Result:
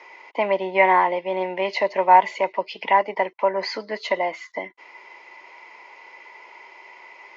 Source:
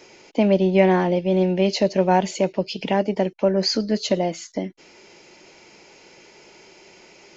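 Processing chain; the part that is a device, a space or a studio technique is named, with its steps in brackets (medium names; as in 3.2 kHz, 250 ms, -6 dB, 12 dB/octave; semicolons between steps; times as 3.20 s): tin-can telephone (band-pass 580–2900 Hz; small resonant body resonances 1/2 kHz, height 16 dB, ringing for 20 ms)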